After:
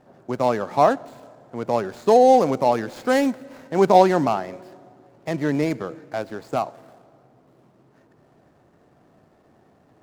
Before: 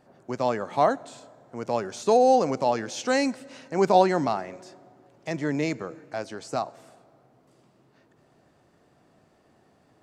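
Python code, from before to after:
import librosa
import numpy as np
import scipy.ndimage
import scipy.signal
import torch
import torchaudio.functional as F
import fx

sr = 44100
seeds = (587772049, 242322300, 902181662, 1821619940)

y = scipy.signal.medfilt(x, 15)
y = F.gain(torch.from_numpy(y), 5.0).numpy()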